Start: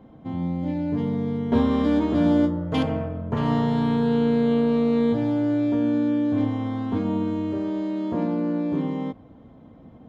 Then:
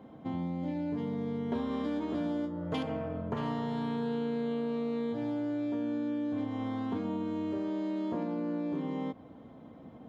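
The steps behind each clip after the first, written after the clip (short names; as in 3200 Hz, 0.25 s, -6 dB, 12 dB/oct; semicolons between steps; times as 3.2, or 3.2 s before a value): HPF 210 Hz 6 dB/oct; compressor 6:1, threshold -31 dBFS, peak gain reduction 13 dB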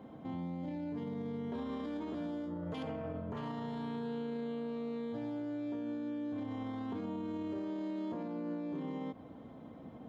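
limiter -32.5 dBFS, peak gain reduction 10.5 dB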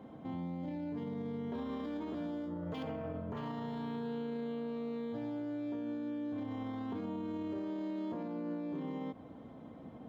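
decimation joined by straight lines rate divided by 2×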